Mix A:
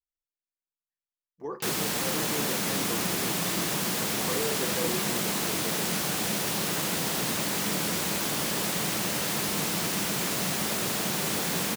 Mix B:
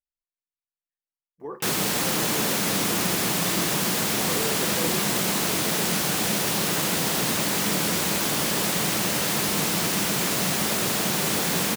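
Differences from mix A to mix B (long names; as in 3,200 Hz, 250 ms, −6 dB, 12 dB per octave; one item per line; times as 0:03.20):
speech: add Savitzky-Golay smoothing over 25 samples
background +4.5 dB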